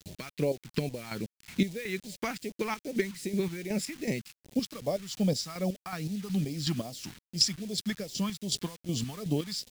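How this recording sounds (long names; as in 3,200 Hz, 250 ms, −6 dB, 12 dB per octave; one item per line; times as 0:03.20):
chopped level 2.7 Hz, depth 65%, duty 40%
a quantiser's noise floor 8 bits, dither none
phaser sweep stages 2, 2.5 Hz, lowest notch 500–1,300 Hz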